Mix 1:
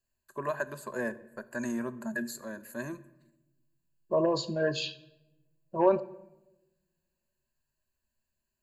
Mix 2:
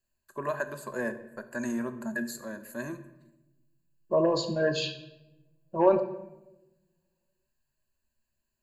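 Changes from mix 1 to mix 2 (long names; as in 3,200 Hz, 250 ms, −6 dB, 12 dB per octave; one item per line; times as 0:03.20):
first voice: send +6.0 dB
second voice: send +9.0 dB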